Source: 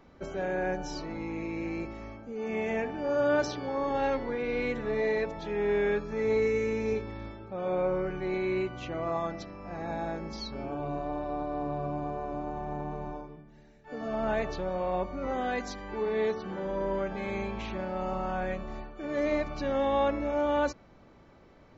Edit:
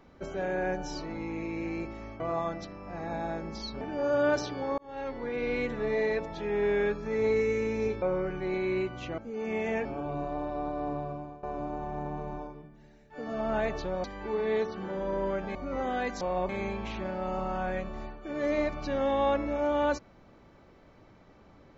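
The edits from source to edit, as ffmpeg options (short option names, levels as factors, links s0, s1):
-filter_complex "[0:a]asplit=12[s0][s1][s2][s3][s4][s5][s6][s7][s8][s9][s10][s11];[s0]atrim=end=2.202[s12];[s1]atrim=start=8.978:end=10.592[s13];[s2]atrim=start=2.868:end=3.84,asetpts=PTS-STARTPTS,afade=t=out:st=0.968:d=0.004:c=hsin[s14];[s3]atrim=start=3.84:end=7.082,asetpts=PTS-STARTPTS,afade=t=in:d=0.62[s15];[s4]atrim=start=7.818:end=8.982[s16];[s5]atrim=start=2.198:end=2.872[s17];[s6]atrim=start=10.588:end=12.17,asetpts=PTS-STARTPTS,afade=t=out:st=1.052:d=0.53:silence=0.125893[s18];[s7]atrim=start=12.17:end=14.782,asetpts=PTS-STARTPTS,afade=t=in:d=0.004:c=hsin:silence=0.125893[s19];[s8]atrim=start=15.718:end=17.232[s20];[s9]atrim=start=15.058:end=15.722[s21];[s10]atrim=start=14.778:end=15.062[s22];[s11]atrim=start=17.228[s23];[s12][s13]acrossfade=d=0.004:c1=hsin:c2=hsin[s24];[s14][s15]concat=n=2:v=0:a=1[s25];[s24][s25]acrossfade=d=0.004:c1=hsin:c2=hsin[s26];[s26][s16]acrossfade=d=0.004:c1=hsin:c2=hsin[s27];[s27][s17]acrossfade=d=0.004:c1=hsin:c2=hsin[s28];[s18][s19]concat=n=2:v=0:a=1[s29];[s28][s29]acrossfade=d=0.004:c1=hsin:c2=hsin[s30];[s30][s20]acrossfade=d=0.004:c1=hsin:c2=hsin[s31];[s31][s21]acrossfade=d=0.004:c1=hsin:c2=hsin[s32];[s32][s22]acrossfade=d=0.004:c1=hsin:c2=hsin[s33];[s33][s23]acrossfade=d=0.004:c1=hsin:c2=hsin"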